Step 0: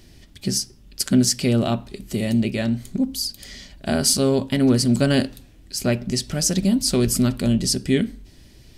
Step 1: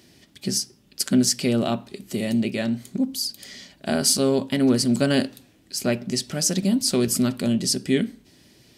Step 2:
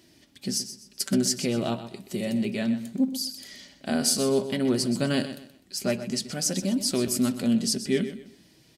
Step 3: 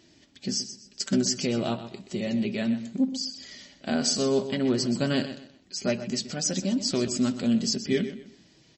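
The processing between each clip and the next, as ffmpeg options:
-af "highpass=160,volume=0.891"
-filter_complex "[0:a]flanger=delay=3:depth=3.4:regen=58:speed=0.29:shape=triangular,asplit=2[s0][s1];[s1]aecho=0:1:126|252|378:0.251|0.0754|0.0226[s2];[s0][s2]amix=inputs=2:normalize=0"
-ar 32000 -c:a libmp3lame -b:a 32k

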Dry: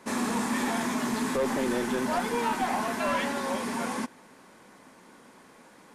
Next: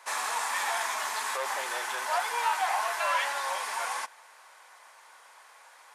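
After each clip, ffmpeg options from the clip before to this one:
-af "highpass=f=720:w=0.5412,highpass=f=720:w=1.3066,volume=1.33"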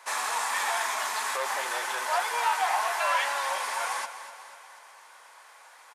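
-af "aecho=1:1:246|492|738|984|1230|1476:0.237|0.128|0.0691|0.0373|0.0202|0.0109,volume=1.19"

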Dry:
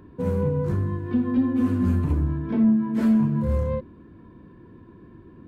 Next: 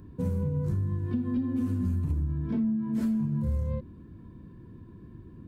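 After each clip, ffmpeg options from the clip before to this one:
-af "bass=f=250:g=11,treble=f=4000:g=11,acompressor=threshold=0.126:ratio=6,volume=0.422"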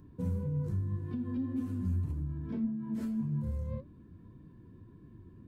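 -af "flanger=delay=6.5:depth=4.9:regen=62:speed=1.8:shape=sinusoidal,volume=0.794"

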